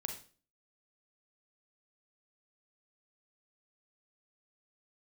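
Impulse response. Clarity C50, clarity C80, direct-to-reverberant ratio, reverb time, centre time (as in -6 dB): 7.5 dB, 12.5 dB, 4.0 dB, 0.40 s, 19 ms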